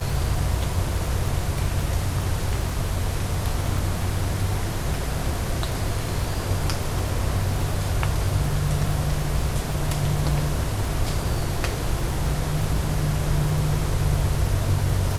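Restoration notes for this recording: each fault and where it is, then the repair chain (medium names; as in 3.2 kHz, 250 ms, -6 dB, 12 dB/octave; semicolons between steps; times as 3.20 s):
crackle 53 per s -30 dBFS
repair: de-click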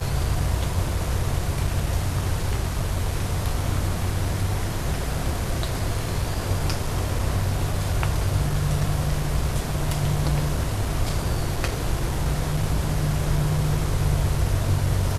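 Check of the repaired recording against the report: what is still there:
nothing left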